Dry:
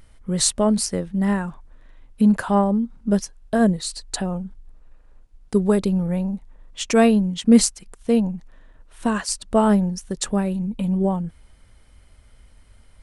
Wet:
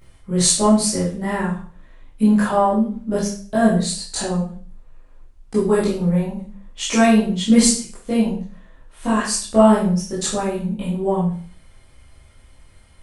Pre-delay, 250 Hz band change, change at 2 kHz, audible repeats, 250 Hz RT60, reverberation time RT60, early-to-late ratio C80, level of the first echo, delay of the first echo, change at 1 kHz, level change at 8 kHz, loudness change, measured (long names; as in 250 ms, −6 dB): 14 ms, +1.5 dB, +4.0 dB, no echo audible, 0.45 s, 0.45 s, 9.5 dB, no echo audible, no echo audible, +4.5 dB, +4.5 dB, +2.0 dB